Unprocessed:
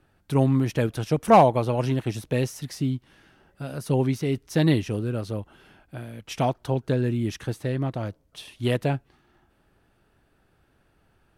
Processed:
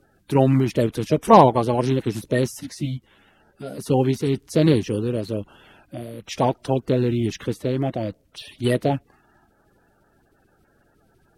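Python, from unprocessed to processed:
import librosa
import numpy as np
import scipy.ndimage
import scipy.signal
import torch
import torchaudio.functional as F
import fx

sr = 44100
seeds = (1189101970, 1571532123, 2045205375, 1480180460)

y = fx.spec_quant(x, sr, step_db=30)
y = fx.ensemble(y, sr, at=(2.6, 3.78), fade=0.02)
y = y * librosa.db_to_amplitude(4.0)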